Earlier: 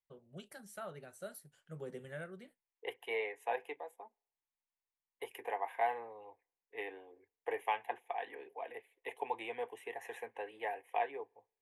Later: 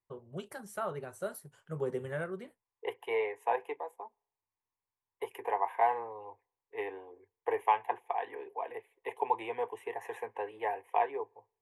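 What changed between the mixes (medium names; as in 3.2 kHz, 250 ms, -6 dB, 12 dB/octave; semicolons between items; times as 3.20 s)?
first voice +4.5 dB; master: add fifteen-band graphic EQ 100 Hz +12 dB, 400 Hz +7 dB, 1 kHz +11 dB, 4 kHz -3 dB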